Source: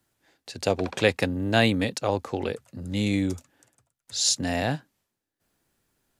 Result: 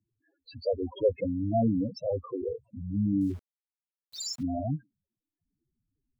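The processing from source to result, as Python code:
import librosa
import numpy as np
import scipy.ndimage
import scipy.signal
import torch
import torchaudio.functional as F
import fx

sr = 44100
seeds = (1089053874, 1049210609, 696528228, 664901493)

y = fx.spec_topn(x, sr, count=4)
y = fx.sample_gate(y, sr, floor_db=-47.5, at=(3.21, 4.43))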